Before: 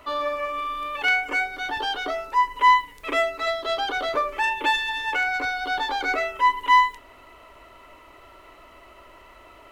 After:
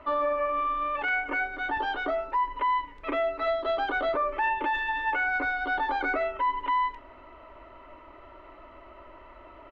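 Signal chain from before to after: LPF 1900 Hz 12 dB/oct; comb 3.3 ms, depth 33%; limiter -20 dBFS, peak gain reduction 11 dB

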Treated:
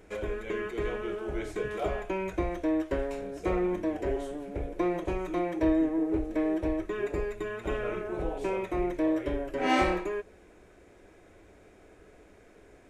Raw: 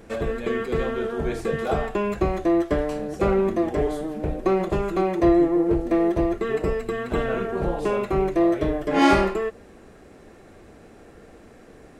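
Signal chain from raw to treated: thirty-one-band EQ 160 Hz -12 dB, 250 Hz -9 dB, 1250 Hz -4 dB, 2500 Hz +5 dB, 5000 Hz -4 dB; varispeed -7%; gain -6.5 dB

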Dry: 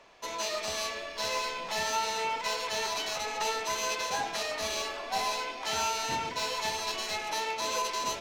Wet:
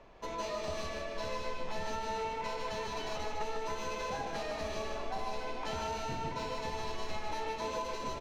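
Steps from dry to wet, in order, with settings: tilt -3.5 dB/oct; compressor, threshold -33 dBFS, peak gain reduction 9 dB; feedback echo 0.153 s, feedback 40%, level -5 dB; gain -2 dB

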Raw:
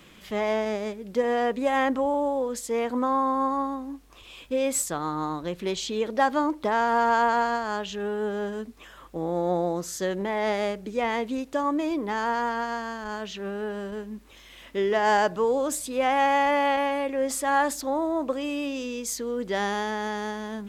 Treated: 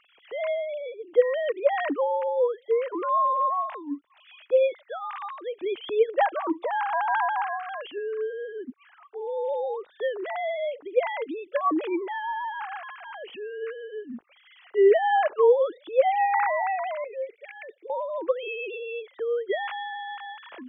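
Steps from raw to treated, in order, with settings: sine-wave speech; 7.98–9.27 air absorption 340 m; 17.04–17.9 double band-pass 1000 Hz, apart 2.4 oct

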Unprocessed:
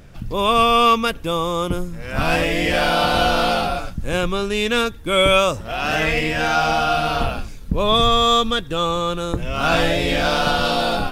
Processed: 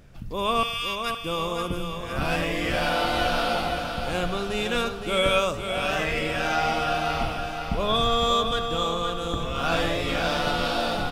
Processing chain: 0.63–1.22 steep high-pass 1500 Hz 36 dB/oct; feedback echo 0.514 s, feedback 55%, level -7 dB; on a send at -13 dB: reverb RT60 0.65 s, pre-delay 42 ms; on the sum: gain -7.5 dB

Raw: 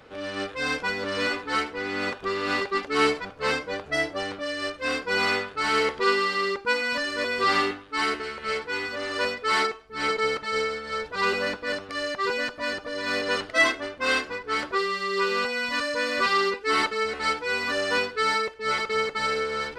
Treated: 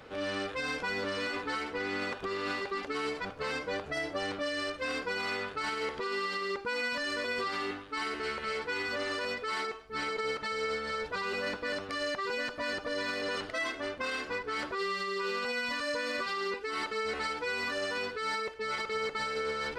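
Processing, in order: compressor, threshold -26 dBFS, peak gain reduction 10.5 dB; limiter -25.5 dBFS, peak gain reduction 9 dB

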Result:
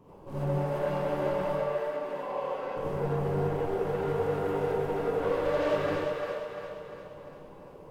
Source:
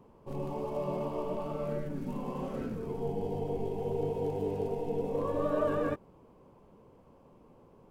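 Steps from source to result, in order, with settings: 1.52–2.77 three-band isolator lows -24 dB, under 440 Hz, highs -15 dB, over 4000 Hz; soft clip -36 dBFS, distortion -8 dB; split-band echo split 420 Hz, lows 83 ms, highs 0.347 s, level -4 dB; non-linear reverb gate 0.11 s rising, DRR -7.5 dB

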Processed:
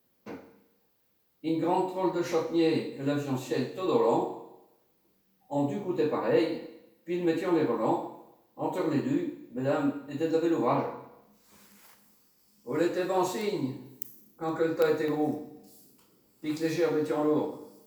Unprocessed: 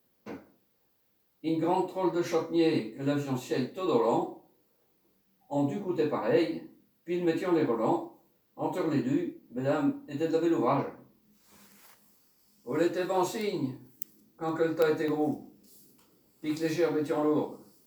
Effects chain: Schroeder reverb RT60 0.9 s, combs from 27 ms, DRR 9.5 dB

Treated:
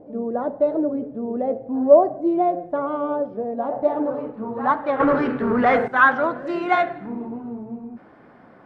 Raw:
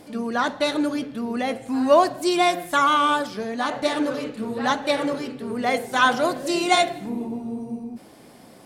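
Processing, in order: 5–5.88 sample leveller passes 3; low-pass sweep 570 Hz -> 1500 Hz, 3.41–5.28; record warp 45 rpm, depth 100 cents; gain -2 dB

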